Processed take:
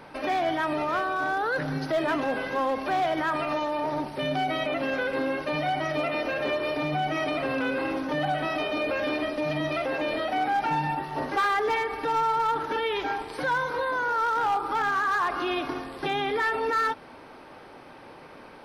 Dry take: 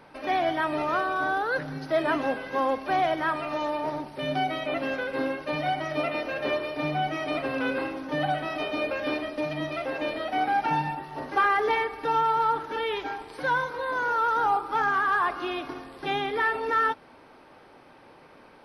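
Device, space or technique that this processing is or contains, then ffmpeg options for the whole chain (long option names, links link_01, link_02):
clipper into limiter: -af "asoftclip=type=hard:threshold=-19.5dB,alimiter=level_in=1.5dB:limit=-24dB:level=0:latency=1:release=47,volume=-1.5dB,volume=5.5dB"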